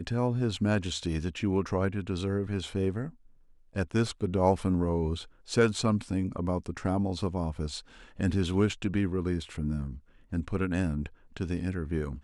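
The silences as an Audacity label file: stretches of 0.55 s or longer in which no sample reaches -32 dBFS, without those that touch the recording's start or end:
3.070000	3.760000	silence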